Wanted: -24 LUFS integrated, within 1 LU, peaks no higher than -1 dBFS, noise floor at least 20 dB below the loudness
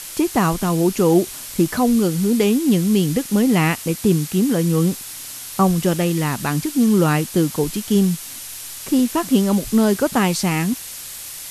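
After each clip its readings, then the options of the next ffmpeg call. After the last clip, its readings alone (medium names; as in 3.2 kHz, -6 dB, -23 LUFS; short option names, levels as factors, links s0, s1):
noise floor -34 dBFS; noise floor target -39 dBFS; loudness -18.5 LUFS; peak level -4.0 dBFS; loudness target -24.0 LUFS
-> -af "afftdn=nr=6:nf=-34"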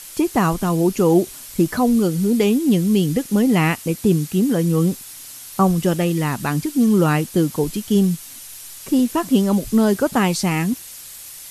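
noise floor -38 dBFS; noise floor target -39 dBFS
-> -af "afftdn=nr=6:nf=-38"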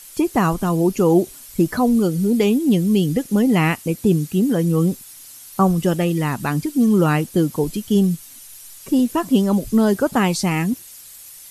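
noise floor -41 dBFS; loudness -19.0 LUFS; peak level -4.5 dBFS; loudness target -24.0 LUFS
-> -af "volume=0.562"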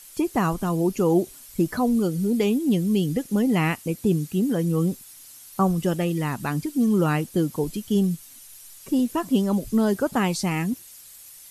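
loudness -24.0 LUFS; peak level -9.5 dBFS; noise floor -46 dBFS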